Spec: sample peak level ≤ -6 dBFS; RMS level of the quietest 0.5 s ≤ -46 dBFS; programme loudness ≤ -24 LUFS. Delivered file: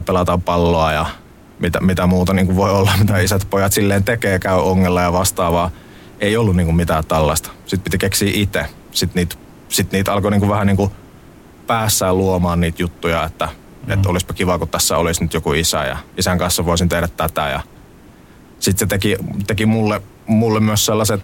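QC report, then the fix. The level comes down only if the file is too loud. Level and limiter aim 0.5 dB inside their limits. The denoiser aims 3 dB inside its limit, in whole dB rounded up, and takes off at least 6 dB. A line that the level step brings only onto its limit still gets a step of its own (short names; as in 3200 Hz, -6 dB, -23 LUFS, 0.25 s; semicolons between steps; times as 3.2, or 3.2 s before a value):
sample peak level -5.0 dBFS: fail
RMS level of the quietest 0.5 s -43 dBFS: fail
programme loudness -16.5 LUFS: fail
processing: gain -8 dB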